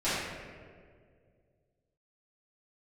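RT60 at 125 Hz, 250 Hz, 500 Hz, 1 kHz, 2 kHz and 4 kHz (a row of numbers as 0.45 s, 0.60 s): 2.8 s, 2.4 s, 2.4 s, 1.6 s, 1.5 s, 1.0 s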